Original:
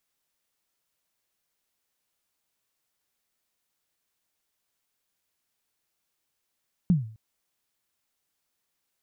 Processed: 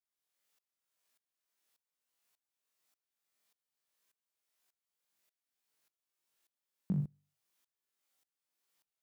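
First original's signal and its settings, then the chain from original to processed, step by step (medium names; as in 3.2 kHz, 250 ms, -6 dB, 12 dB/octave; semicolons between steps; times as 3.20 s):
kick drum length 0.26 s, from 190 Hz, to 110 Hz, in 149 ms, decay 0.46 s, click off, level -14 dB
high-pass 280 Hz 6 dB/octave; on a send: flutter echo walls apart 3.5 m, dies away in 0.39 s; on the sum: sawtooth tremolo in dB swelling 1.7 Hz, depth 22 dB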